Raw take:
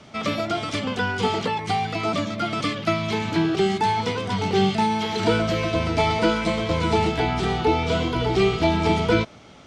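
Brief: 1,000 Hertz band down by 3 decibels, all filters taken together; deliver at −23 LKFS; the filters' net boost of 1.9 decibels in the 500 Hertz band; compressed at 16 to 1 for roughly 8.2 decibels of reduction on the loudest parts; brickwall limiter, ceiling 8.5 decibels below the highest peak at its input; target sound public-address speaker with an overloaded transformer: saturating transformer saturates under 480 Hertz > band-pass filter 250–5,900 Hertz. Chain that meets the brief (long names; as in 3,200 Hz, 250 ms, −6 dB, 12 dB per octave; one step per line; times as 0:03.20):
parametric band 500 Hz +4.5 dB
parametric band 1,000 Hz −5.5 dB
downward compressor 16 to 1, threshold −21 dBFS
brickwall limiter −21 dBFS
saturating transformer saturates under 480 Hz
band-pass filter 250–5,900 Hz
level +10.5 dB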